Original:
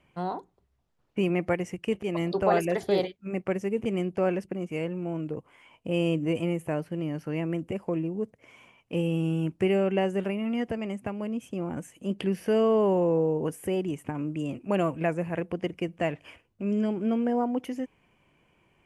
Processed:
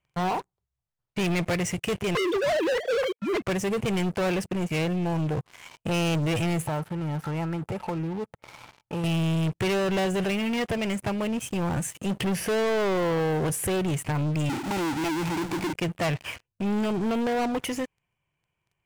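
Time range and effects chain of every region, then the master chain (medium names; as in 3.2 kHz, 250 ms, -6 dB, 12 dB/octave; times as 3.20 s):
2.15–3.42 s: formants replaced by sine waves + three bands compressed up and down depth 70%
6.67–9.04 s: peaking EQ 4.7 kHz -13 dB 1.6 oct + compression 2:1, threshold -43 dBFS + small resonant body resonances 870/1300/3500 Hz, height 15 dB, ringing for 40 ms
14.49–15.73 s: vowel filter u + power-law waveshaper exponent 0.35
whole clip: graphic EQ 125/250/500/8000 Hz +7/-11/-3/+4 dB; waveshaping leveller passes 5; trim -4.5 dB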